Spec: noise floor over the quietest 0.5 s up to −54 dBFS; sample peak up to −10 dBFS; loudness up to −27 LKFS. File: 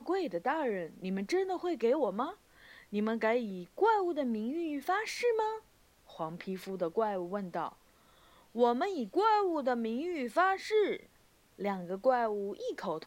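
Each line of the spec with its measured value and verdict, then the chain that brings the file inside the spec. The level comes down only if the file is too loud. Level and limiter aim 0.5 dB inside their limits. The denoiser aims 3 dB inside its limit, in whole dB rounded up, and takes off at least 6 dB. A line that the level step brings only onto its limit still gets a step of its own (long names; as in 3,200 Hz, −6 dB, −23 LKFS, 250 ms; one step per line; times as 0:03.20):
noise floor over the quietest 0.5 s −65 dBFS: in spec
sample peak −15.5 dBFS: in spec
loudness −33.0 LKFS: in spec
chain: no processing needed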